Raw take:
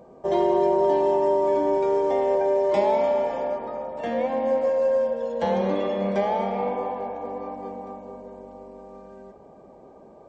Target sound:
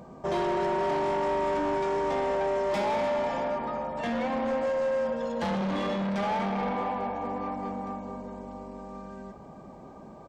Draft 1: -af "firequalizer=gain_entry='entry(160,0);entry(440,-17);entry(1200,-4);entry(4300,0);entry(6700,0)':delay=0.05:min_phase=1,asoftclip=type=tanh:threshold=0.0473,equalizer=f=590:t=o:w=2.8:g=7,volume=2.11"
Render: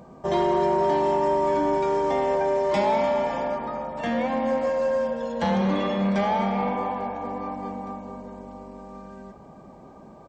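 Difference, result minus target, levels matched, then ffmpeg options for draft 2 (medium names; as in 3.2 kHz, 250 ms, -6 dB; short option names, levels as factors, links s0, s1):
saturation: distortion -11 dB
-af "firequalizer=gain_entry='entry(160,0);entry(440,-17);entry(1200,-4);entry(4300,0);entry(6700,0)':delay=0.05:min_phase=1,asoftclip=type=tanh:threshold=0.0141,equalizer=f=590:t=o:w=2.8:g=7,volume=2.11"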